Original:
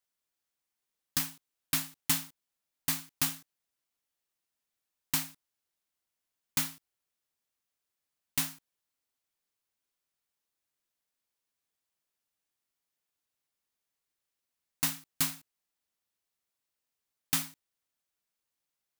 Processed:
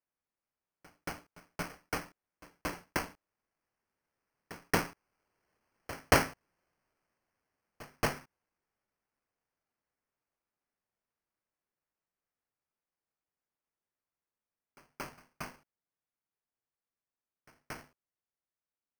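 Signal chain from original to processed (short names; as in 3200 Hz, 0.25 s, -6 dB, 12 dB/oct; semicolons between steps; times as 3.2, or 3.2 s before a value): Doppler pass-by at 5.92, 28 m/s, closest 25 m; sample-and-hold 12×; pre-echo 0.228 s -19 dB; gain +7 dB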